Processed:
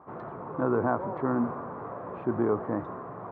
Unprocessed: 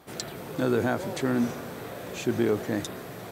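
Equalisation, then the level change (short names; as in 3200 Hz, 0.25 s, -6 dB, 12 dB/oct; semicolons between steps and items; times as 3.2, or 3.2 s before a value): HPF 57 Hz; ladder low-pass 1200 Hz, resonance 65%; +8.5 dB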